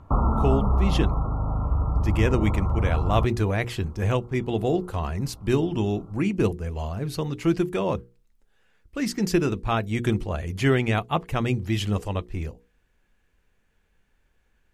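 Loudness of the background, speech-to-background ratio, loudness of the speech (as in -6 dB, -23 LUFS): -25.5 LUFS, -0.5 dB, -26.0 LUFS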